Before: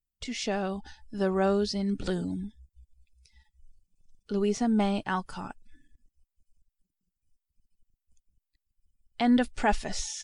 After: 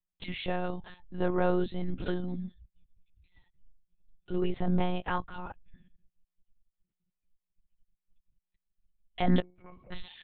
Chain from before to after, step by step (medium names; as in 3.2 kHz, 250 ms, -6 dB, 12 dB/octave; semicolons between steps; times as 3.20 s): 9.40–9.92 s: pitch-class resonator C#, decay 0.43 s; monotone LPC vocoder at 8 kHz 180 Hz; trim -1 dB